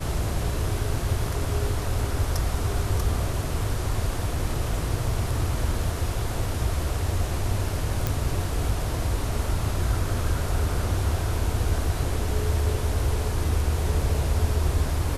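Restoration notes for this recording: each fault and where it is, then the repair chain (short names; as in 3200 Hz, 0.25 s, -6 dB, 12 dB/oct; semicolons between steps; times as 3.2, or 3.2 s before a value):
8.07 pop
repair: de-click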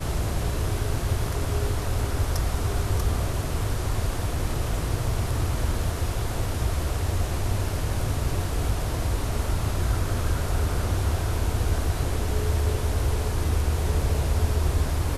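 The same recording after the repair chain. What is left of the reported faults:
none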